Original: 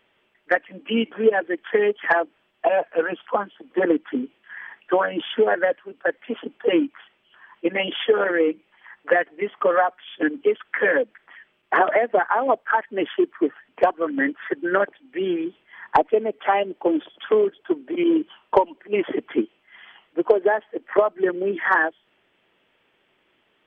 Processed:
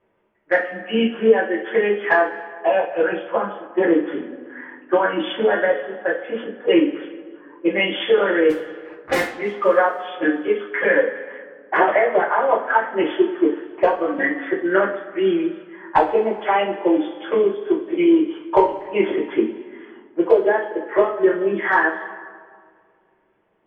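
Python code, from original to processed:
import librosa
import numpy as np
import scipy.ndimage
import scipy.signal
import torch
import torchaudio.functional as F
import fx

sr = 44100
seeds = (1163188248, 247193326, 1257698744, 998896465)

y = fx.cycle_switch(x, sr, every=2, mode='muted', at=(8.49, 9.26), fade=0.02)
y = fx.rev_double_slope(y, sr, seeds[0], early_s=0.32, late_s=2.2, knee_db=-18, drr_db=-6.5)
y = fx.env_lowpass(y, sr, base_hz=1100.0, full_db=-11.5)
y = y * librosa.db_to_amplitude(-4.5)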